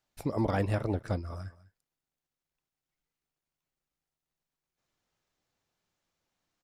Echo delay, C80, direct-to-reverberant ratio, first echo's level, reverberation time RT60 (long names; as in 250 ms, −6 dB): 201 ms, no reverb audible, no reverb audible, −19.0 dB, no reverb audible